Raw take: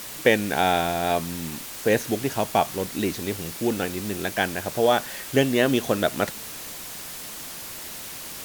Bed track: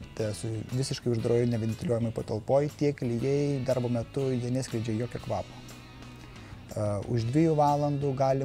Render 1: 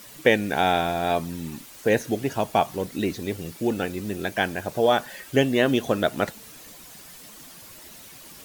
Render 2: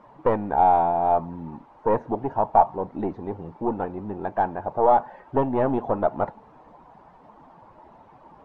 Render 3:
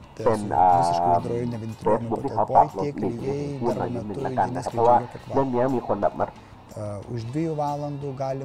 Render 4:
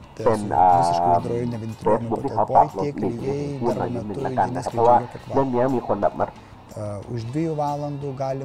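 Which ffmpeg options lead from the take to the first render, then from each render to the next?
ffmpeg -i in.wav -af "afftdn=noise_reduction=10:noise_floor=-37" out.wav
ffmpeg -i in.wav -af "aeval=exprs='(tanh(6.31*val(0)+0.55)-tanh(0.55))/6.31':channel_layout=same,lowpass=frequency=900:width_type=q:width=4.9" out.wav
ffmpeg -i in.wav -i bed.wav -filter_complex "[1:a]volume=-2.5dB[link_01];[0:a][link_01]amix=inputs=2:normalize=0" out.wav
ffmpeg -i in.wav -af "volume=2dB,alimiter=limit=-3dB:level=0:latency=1" out.wav

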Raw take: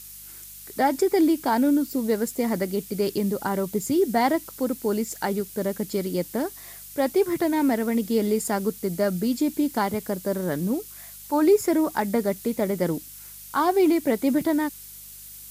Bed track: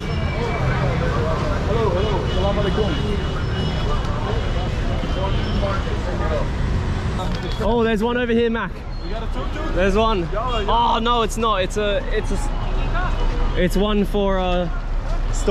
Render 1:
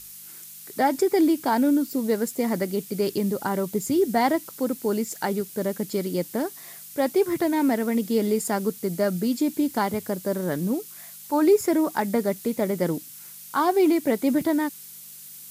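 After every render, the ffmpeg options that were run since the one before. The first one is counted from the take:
ffmpeg -i in.wav -af "bandreject=frequency=50:width_type=h:width=4,bandreject=frequency=100:width_type=h:width=4" out.wav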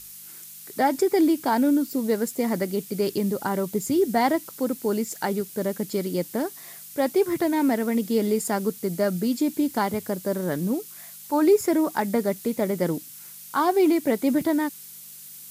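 ffmpeg -i in.wav -af anull out.wav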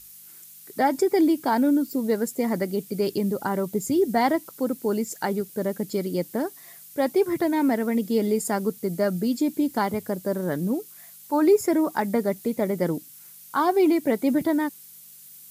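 ffmpeg -i in.wav -af "afftdn=noise_reduction=6:noise_floor=-43" out.wav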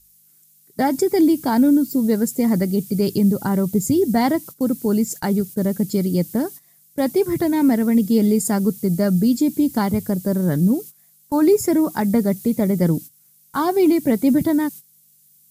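ffmpeg -i in.wav -af "agate=range=-15dB:threshold=-38dB:ratio=16:detection=peak,bass=frequency=250:gain=15,treble=frequency=4000:gain=7" out.wav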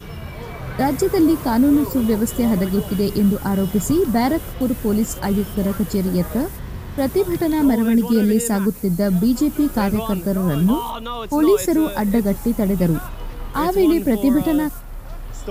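ffmpeg -i in.wav -i bed.wav -filter_complex "[1:a]volume=-10dB[link_01];[0:a][link_01]amix=inputs=2:normalize=0" out.wav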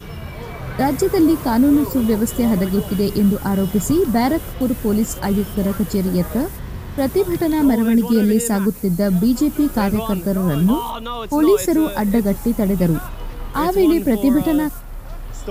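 ffmpeg -i in.wav -af "volume=1dB" out.wav

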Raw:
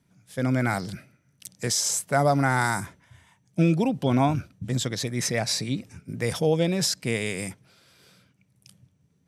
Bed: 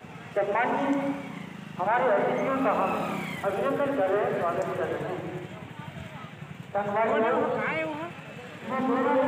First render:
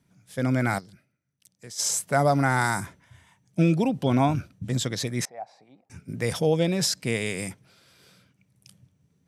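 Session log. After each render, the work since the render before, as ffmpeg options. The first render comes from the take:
ffmpeg -i in.wav -filter_complex "[0:a]asettb=1/sr,asplit=3[link_01][link_02][link_03];[link_01]atrim=end=5.254[link_04];[link_02]atrim=start=5.25:end=5.9,asetpts=PTS-STARTPTS,afade=type=in:duration=0.004:curve=qsin,afade=type=out:start_time=0.646:duration=0.004:curve=qsin,bandpass=frequency=770:width_type=q:width=8[link_05];[link_03]atrim=start=5.896[link_06];[link_04][link_05]acrossfade=duration=0.004:curve1=hsin:curve2=qsin[link_07];[link_07][link_06]acrossfade=duration=0.004:curve1=qsin:curve2=hsin,asplit=3[link_08][link_09][link_10];[link_08]atrim=end=0.91,asetpts=PTS-STARTPTS,afade=type=out:start_time=0.78:duration=0.13:curve=exp:silence=0.158489[link_11];[link_09]atrim=start=0.91:end=1.67,asetpts=PTS-STARTPTS,volume=-16dB[link_12];[link_10]atrim=start=1.67,asetpts=PTS-STARTPTS,afade=type=in:duration=0.13:curve=exp:silence=0.158489[link_13];[link_11][link_12][link_13]concat=n=3:v=0:a=1" out.wav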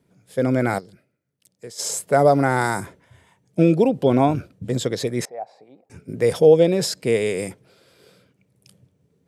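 ffmpeg -i in.wav -af "equalizer=frequency=450:width_type=o:width=1.1:gain=12,bandreject=frequency=5900:width=11" out.wav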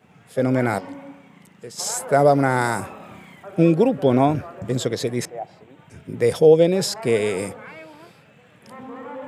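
ffmpeg -i in.wav -i bed.wav -filter_complex "[1:a]volume=-11dB[link_01];[0:a][link_01]amix=inputs=2:normalize=0" out.wav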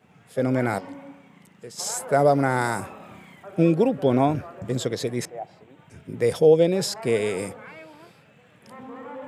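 ffmpeg -i in.wav -af "volume=-3dB" out.wav

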